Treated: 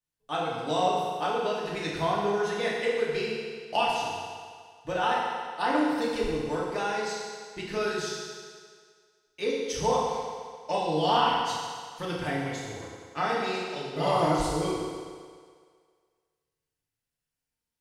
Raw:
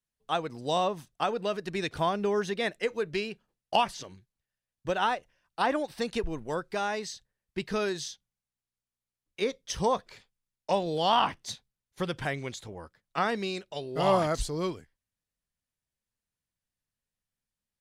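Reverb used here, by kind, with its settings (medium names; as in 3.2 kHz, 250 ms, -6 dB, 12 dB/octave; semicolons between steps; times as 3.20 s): FDN reverb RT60 1.9 s, low-frequency decay 0.75×, high-frequency decay 0.95×, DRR -6 dB; trim -5 dB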